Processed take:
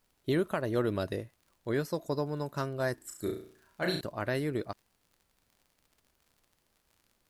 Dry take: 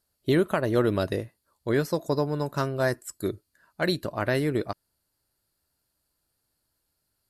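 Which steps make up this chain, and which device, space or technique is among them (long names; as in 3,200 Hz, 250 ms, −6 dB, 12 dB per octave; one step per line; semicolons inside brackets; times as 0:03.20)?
vinyl LP (surface crackle 60 per second −44 dBFS; pink noise bed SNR 40 dB)
0:02.94–0:04.01: flutter between parallel walls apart 5.9 metres, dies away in 0.49 s
level −6.5 dB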